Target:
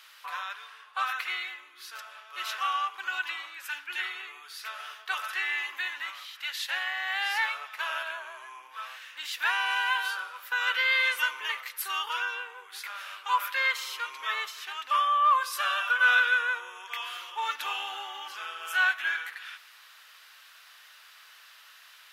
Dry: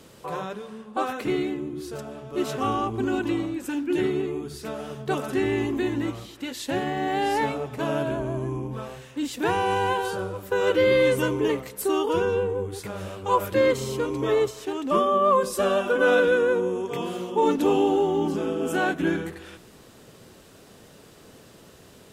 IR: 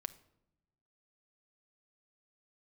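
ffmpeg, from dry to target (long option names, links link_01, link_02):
-filter_complex "[0:a]highpass=frequency=1300:width=0.5412,highpass=frequency=1300:width=1.3066,equalizer=frequency=8100:width=1.1:gain=-13.5,acontrast=72,asplit=2[link_01][link_02];[1:a]atrim=start_sample=2205,asetrate=24696,aresample=44100[link_03];[link_02][link_03]afir=irnorm=-1:irlink=0,volume=0dB[link_04];[link_01][link_04]amix=inputs=2:normalize=0,volume=-6.5dB"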